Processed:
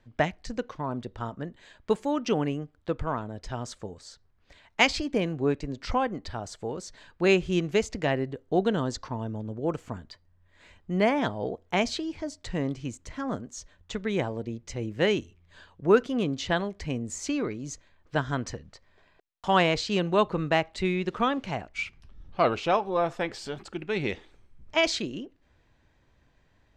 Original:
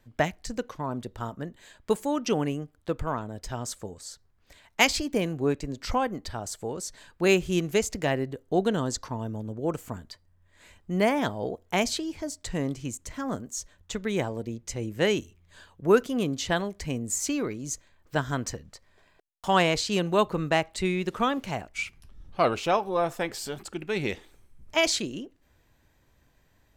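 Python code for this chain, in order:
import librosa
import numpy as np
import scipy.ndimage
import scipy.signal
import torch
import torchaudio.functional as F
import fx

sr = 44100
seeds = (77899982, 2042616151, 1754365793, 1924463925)

y = scipy.signal.sosfilt(scipy.signal.butter(2, 4800.0, 'lowpass', fs=sr, output='sos'), x)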